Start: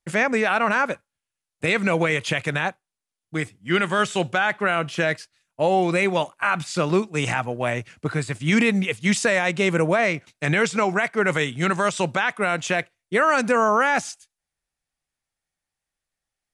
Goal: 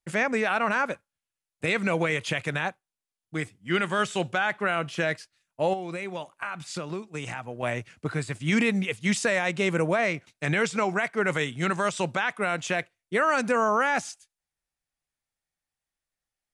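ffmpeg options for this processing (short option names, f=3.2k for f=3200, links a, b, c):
-filter_complex "[0:a]asettb=1/sr,asplit=3[a][b][c];[a]atrim=end=5.734[d];[b]atrim=start=5.73:end=7.63,asetpts=PTS-STARTPTS,afade=t=in:d=0.004:c=qsin,afade=t=out:st=1.896:d=0.004:c=qsin,acompressor=threshold=-26dB:ratio=6[e];[c]atrim=start=7.626[f];[d][e]acrossfade=d=0.004:c1=hsin:c2=qsin[g];[g][f]acrossfade=d=0.004:c1=qsin:c2=hsin,volume=-4.5dB"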